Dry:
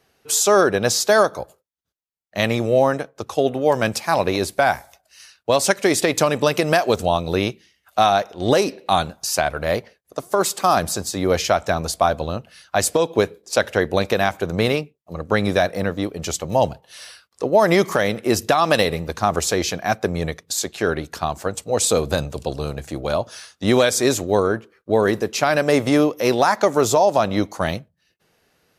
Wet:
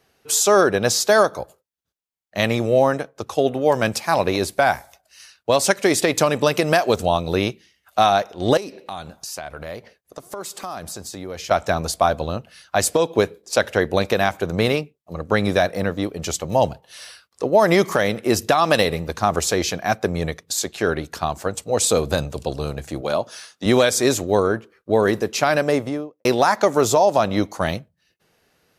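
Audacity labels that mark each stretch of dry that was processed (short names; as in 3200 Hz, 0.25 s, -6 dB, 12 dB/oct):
8.570000	11.510000	compressor 3:1, threshold -32 dBFS
23.010000	23.660000	HPF 160 Hz
25.490000	26.250000	studio fade out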